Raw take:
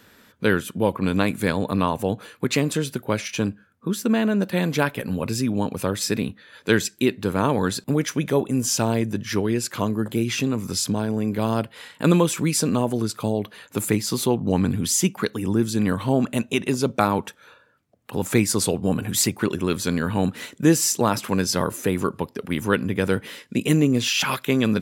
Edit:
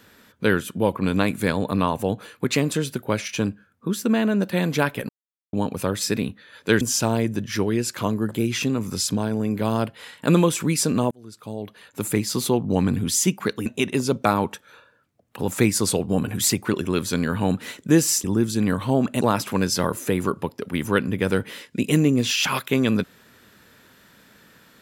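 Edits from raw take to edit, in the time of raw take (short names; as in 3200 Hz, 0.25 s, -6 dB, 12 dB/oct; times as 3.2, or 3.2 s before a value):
5.09–5.53 mute
6.81–8.58 cut
12.88–14.06 fade in
15.43–16.4 move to 20.98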